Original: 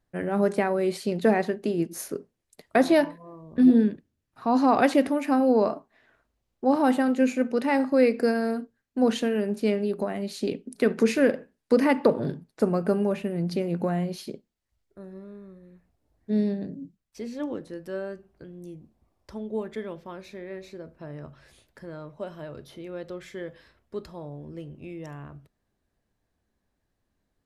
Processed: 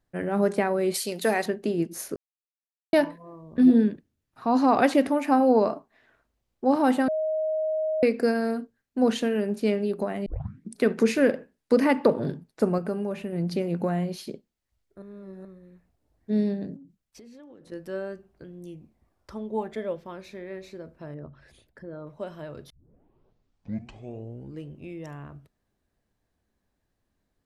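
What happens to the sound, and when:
0.94–1.46 RIAA curve recording
2.16–2.93 mute
5.1–5.59 bell 850 Hz +5.5 dB 0.91 oct
7.08–8.03 bleep 627 Hz -23.5 dBFS
10.26 tape start 0.50 s
12.78–13.33 compressor 1.5:1, threshold -34 dBFS
15.02–15.45 reverse
16.76–17.72 compressor 12:1, threshold -45 dBFS
18.65–19.95 bell 3200 Hz -> 520 Hz +11.5 dB 0.25 oct
21.14–22.07 formant sharpening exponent 1.5
22.7 tape start 1.99 s

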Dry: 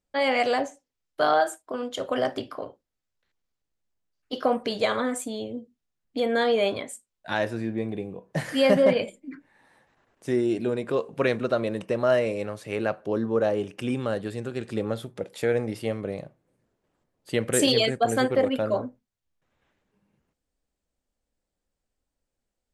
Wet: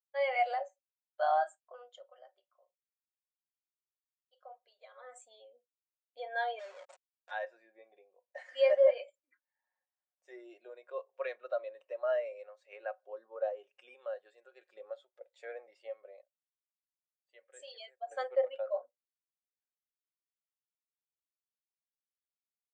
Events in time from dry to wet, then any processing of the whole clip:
1.86–5.18 dip -12.5 dB, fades 0.24 s
6.59–7.31 Schmitt trigger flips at -33.5 dBFS
16.22–18.11 gain -10.5 dB
whole clip: Chebyshev band-pass 590–7600 Hz, order 3; comb 5.5 ms, depth 40%; spectral expander 1.5:1; gain -5 dB

